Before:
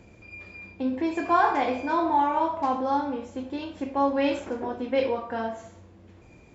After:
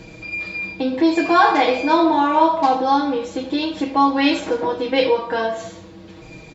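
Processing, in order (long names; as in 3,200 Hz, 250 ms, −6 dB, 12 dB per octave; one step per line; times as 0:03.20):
parametric band 4,100 Hz +9 dB 0.83 octaves
comb filter 6.3 ms, depth 93%
in parallel at −2 dB: downward compressor, threshold −33 dBFS, peak gain reduction 17 dB
on the sum: level +4.5 dB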